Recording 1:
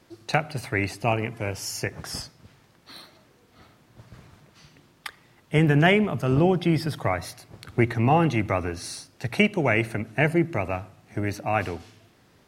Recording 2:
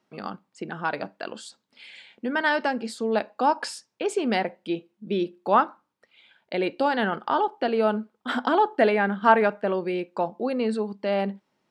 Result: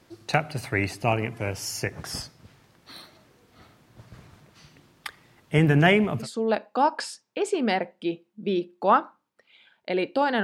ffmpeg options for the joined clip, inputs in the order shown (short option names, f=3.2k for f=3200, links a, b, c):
-filter_complex "[0:a]apad=whole_dur=10.43,atrim=end=10.43,atrim=end=6.27,asetpts=PTS-STARTPTS[a];[1:a]atrim=start=2.81:end=7.07,asetpts=PTS-STARTPTS[b];[a][b]acrossfade=d=0.1:c1=tri:c2=tri"